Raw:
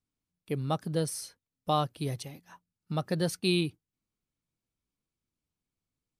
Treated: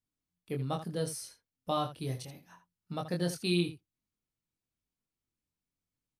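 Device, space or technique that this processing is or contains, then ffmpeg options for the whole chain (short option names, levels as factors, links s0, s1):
slapback doubling: -filter_complex "[0:a]asplit=3[s0][s1][s2];[s1]adelay=23,volume=0.631[s3];[s2]adelay=80,volume=0.266[s4];[s0][s3][s4]amix=inputs=3:normalize=0,volume=0.562"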